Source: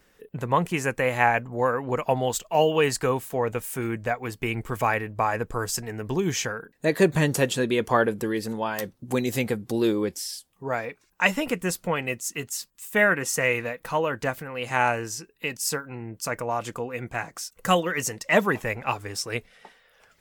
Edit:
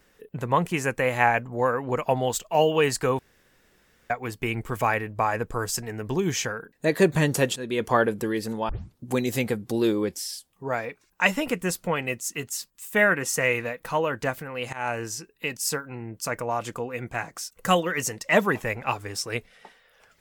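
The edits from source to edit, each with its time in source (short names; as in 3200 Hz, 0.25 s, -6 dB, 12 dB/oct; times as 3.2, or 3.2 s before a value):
3.19–4.1 room tone
7.56–7.86 fade in, from -15.5 dB
8.69 tape start 0.29 s
14.73–15.03 fade in, from -21 dB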